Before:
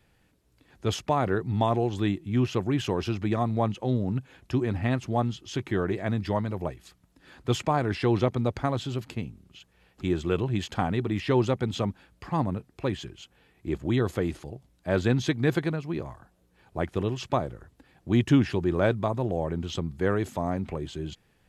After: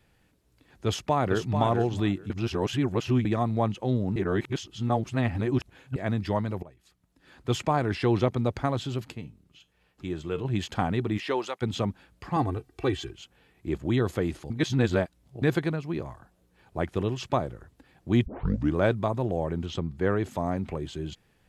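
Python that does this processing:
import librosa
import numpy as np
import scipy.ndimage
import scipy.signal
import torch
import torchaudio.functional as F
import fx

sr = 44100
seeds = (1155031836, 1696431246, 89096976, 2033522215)

y = fx.echo_throw(x, sr, start_s=0.86, length_s=0.7, ms=440, feedback_pct=15, wet_db=-7.0)
y = fx.comb_fb(y, sr, f0_hz=150.0, decay_s=0.23, harmonics='all', damping=0.0, mix_pct=60, at=(9.12, 10.45))
y = fx.highpass(y, sr, hz=fx.line((11.17, 250.0), (11.61, 1100.0)), slope=12, at=(11.17, 11.61), fade=0.02)
y = fx.comb(y, sr, ms=2.6, depth=0.88, at=(12.36, 13.12))
y = fx.high_shelf(y, sr, hz=5800.0, db=-9.5, at=(19.66, 20.31))
y = fx.edit(y, sr, fx.reverse_span(start_s=2.3, length_s=0.95),
    fx.reverse_span(start_s=4.16, length_s=1.8),
    fx.fade_in_from(start_s=6.63, length_s=1.02, floor_db=-20.5),
    fx.reverse_span(start_s=14.5, length_s=0.92),
    fx.tape_start(start_s=18.26, length_s=0.49), tone=tone)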